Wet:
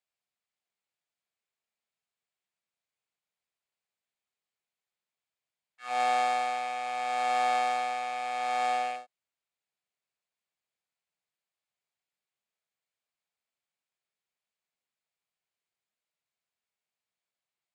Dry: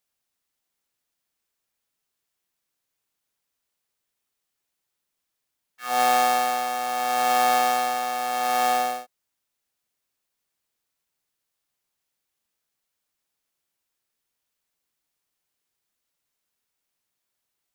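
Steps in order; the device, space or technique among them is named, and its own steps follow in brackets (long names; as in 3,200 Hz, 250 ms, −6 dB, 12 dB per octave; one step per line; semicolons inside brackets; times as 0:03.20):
car door speaker with a rattle (loose part that buzzes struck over −47 dBFS, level −27 dBFS; loudspeaker in its box 95–7,900 Hz, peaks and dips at 290 Hz −9 dB, 680 Hz +4 dB, 2,300 Hz +4 dB, 5,800 Hz −8 dB)
level −8.5 dB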